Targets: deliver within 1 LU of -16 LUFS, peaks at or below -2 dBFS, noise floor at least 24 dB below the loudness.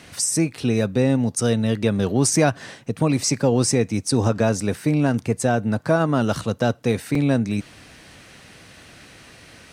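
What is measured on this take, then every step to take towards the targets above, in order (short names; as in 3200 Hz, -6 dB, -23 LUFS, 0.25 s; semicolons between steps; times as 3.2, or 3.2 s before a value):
dropouts 2; longest dropout 3.0 ms; loudness -21.0 LUFS; peak -5.0 dBFS; loudness target -16.0 LUFS
-> interpolate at 4.07/7.15, 3 ms; gain +5 dB; limiter -2 dBFS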